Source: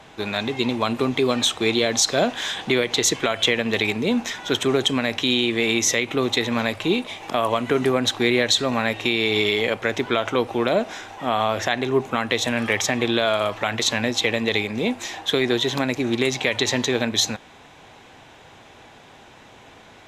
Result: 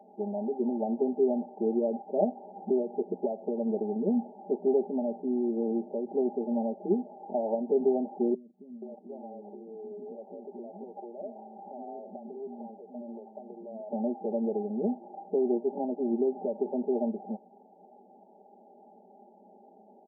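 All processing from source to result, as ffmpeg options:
ffmpeg -i in.wav -filter_complex "[0:a]asettb=1/sr,asplit=3[link_01][link_02][link_03];[link_01]atrim=end=8.344[link_04];[link_02]atrim=start=8.34:end=13.89,asetpts=PTS-STARTPTS,afade=type=in:duration=0.004:curve=qsin,afade=type=out:start_time=5.546:duration=0.004:curve=qsin,acompressor=threshold=-29dB:ratio=6:attack=3.2:release=140:knee=1:detection=peak,acrossover=split=310|1500[link_05][link_06][link_07];[link_07]adelay=200[link_08];[link_06]adelay=480[link_09];[link_05][link_09][link_08]amix=inputs=3:normalize=0,atrim=end_sample=244755[link_10];[link_03]atrim=start=13.886[link_11];[link_04][link_10]acrossfade=duration=0.004:curve1=hsin:curve2=qsin[link_12];[link_12][link_11]acrossfade=duration=0.004:curve1=qsin:curve2=hsin,aecho=1:1:5:1,afftfilt=real='re*between(b*sr/4096,180,930)':imag='im*between(b*sr/4096,180,930)':win_size=4096:overlap=0.75,volume=-9dB" out.wav

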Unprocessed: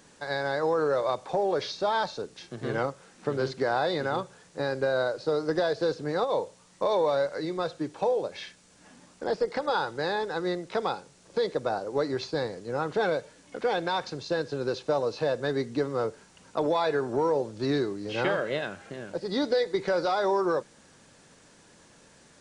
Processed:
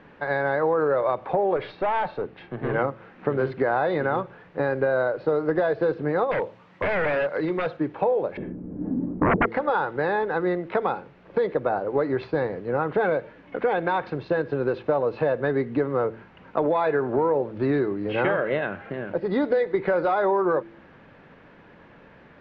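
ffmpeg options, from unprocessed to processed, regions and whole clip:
ffmpeg -i in.wav -filter_complex "[0:a]asettb=1/sr,asplit=3[link_01][link_02][link_03];[link_01]atrim=end=1.564[link_04];[link_02]atrim=start=1.56:end=2.73,asetpts=PTS-STARTPTS,afade=type=in:duration=0.004:curve=qsin,afade=type=out:start_time=1.166:duration=0.004:curve=qsin,lowpass=4500,equalizer=frequency=770:width_type=o:width=0.27:gain=4.5,aeval=exprs='(tanh(20*val(0)+0.25)-tanh(0.25))/20':channel_layout=same[link_05];[link_03]atrim=start=2.726[link_06];[link_04][link_05]acrossfade=duration=0.004:curve1=hsin:curve2=qsin[link_07];[link_07][link_06]acrossfade=duration=0.004:curve1=qsin:curve2=hsin,asettb=1/sr,asplit=3[link_08][link_09][link_10];[link_08]atrim=end=6.314[link_11];[link_09]atrim=start=6.31:end=7.77,asetpts=PTS-STARTPTS,afade=type=in:duration=0.004:curve=qsin,afade=type=out:start_time=1.456:duration=0.004:curve=qsin,highpass=82,highshelf=frequency=5600:gain=10,aeval=exprs='0.0562*(abs(mod(val(0)/0.0562+3,4)-2)-1)':channel_layout=same[link_12];[link_10]atrim=start=7.766[link_13];[link_11][link_12]acrossfade=duration=0.004:curve1=hsin:curve2=qsin[link_14];[link_14][link_13]acrossfade=duration=0.004:curve1=qsin:curve2=hsin,asettb=1/sr,asplit=3[link_15][link_16][link_17];[link_15]atrim=end=8.374[link_18];[link_16]atrim=start=8.37:end=9.46,asetpts=PTS-STARTPTS,afade=type=in:duration=0.004:curve=qsin,afade=type=out:start_time=1.086:duration=0.004:curve=qsin,lowpass=frequency=300:width_type=q:width=2.8,aeval=exprs='0.119*sin(PI/2*4.47*val(0)/0.119)':channel_layout=same[link_19];[link_17]atrim=start=9.456[link_20];[link_18][link_19]acrossfade=duration=0.004:curve1=hsin:curve2=qsin[link_21];[link_21][link_20]acrossfade=duration=0.004:curve1=qsin:curve2=hsin,lowpass=frequency=2500:width=0.5412,lowpass=frequency=2500:width=1.3066,bandreject=frequency=112.4:width_type=h:width=4,bandreject=frequency=224.8:width_type=h:width=4,bandreject=frequency=337.2:width_type=h:width=4,acompressor=threshold=-29dB:ratio=2,volume=7.5dB" out.wav

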